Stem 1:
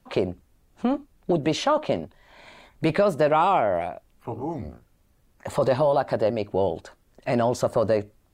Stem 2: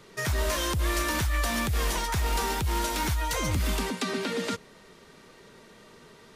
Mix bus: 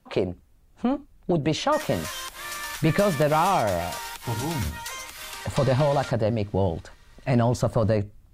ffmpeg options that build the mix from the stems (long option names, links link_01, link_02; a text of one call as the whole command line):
ffmpeg -i stem1.wav -i stem2.wav -filter_complex "[0:a]asubboost=boost=3.5:cutoff=200,volume=-0.5dB[link_01];[1:a]highpass=920,adelay=1550,volume=-3dB[link_02];[link_01][link_02]amix=inputs=2:normalize=0" out.wav